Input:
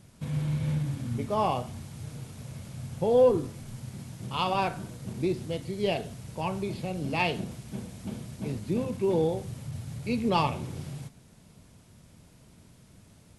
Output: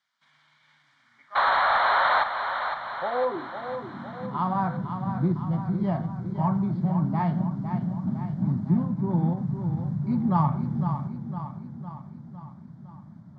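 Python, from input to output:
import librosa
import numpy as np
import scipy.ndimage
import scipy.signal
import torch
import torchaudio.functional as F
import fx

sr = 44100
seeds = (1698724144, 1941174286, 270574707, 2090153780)

p1 = fx.dynamic_eq(x, sr, hz=1500.0, q=0.78, threshold_db=-41.0, ratio=4.0, max_db=6)
p2 = fx.rider(p1, sr, range_db=5, speed_s=0.5)
p3 = p1 + (p2 * librosa.db_to_amplitude(0.5))
p4 = fx.filter_sweep_highpass(p3, sr, from_hz=2700.0, to_hz=160.0, start_s=0.84, end_s=4.68, q=2.7)
p5 = fx.spec_paint(p4, sr, seeds[0], shape='noise', start_s=1.35, length_s=0.89, low_hz=410.0, high_hz=4300.0, level_db=-7.0)
p6 = fx.fixed_phaser(p5, sr, hz=1100.0, stages=4)
p7 = 10.0 ** (-4.0 / 20.0) * np.tanh(p6 / 10.0 ** (-4.0 / 20.0))
p8 = fx.spacing_loss(p7, sr, db_at_10k=43)
p9 = p8 + fx.echo_feedback(p8, sr, ms=507, feedback_pct=56, wet_db=-8, dry=0)
p10 = fx.end_taper(p9, sr, db_per_s=230.0)
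y = p10 * librosa.db_to_amplitude(-2.5)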